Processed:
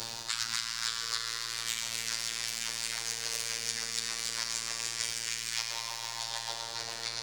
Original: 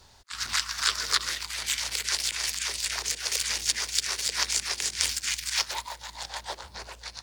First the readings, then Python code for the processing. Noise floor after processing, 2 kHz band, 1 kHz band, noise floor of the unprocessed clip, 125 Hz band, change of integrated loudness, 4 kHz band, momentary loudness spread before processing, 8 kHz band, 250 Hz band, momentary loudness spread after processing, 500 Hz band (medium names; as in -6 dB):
-40 dBFS, -5.5 dB, -5.0 dB, -52 dBFS, -3.5 dB, -5.5 dB, -4.5 dB, 12 LU, -5.0 dB, -1.0 dB, 3 LU, -3.0 dB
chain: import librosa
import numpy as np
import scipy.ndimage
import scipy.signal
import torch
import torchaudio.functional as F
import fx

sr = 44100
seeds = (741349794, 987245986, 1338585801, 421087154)

y = fx.echo_stepped(x, sr, ms=101, hz=220.0, octaves=0.7, feedback_pct=70, wet_db=-5.5)
y = fx.rev_schroeder(y, sr, rt60_s=1.9, comb_ms=27, drr_db=0.0)
y = fx.robotise(y, sr, hz=115.0)
y = fx.band_squash(y, sr, depth_pct=100)
y = y * 10.0 ** (-7.0 / 20.0)